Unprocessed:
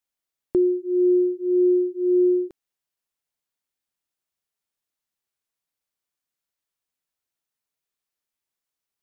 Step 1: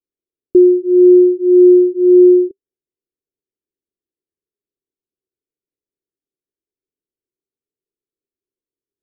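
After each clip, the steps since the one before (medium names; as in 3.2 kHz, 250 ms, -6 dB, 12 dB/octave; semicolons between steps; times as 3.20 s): FFT filter 210 Hz 0 dB, 390 Hz +13 dB, 870 Hz -22 dB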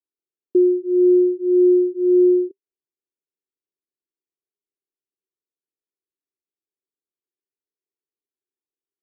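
band-pass filter 380 Hz, Q 0.84; trim -7 dB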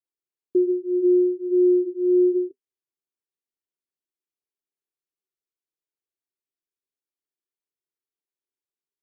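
flange 1.2 Hz, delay 5.5 ms, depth 3.4 ms, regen -61%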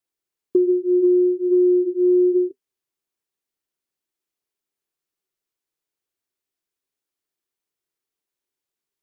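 compression, threshold -21 dBFS, peak gain reduction 6.5 dB; trim +7 dB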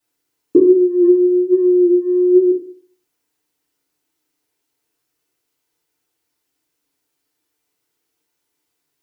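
FDN reverb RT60 0.53 s, low-frequency decay 1×, high-frequency decay 0.8×, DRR -8.5 dB; trim +4 dB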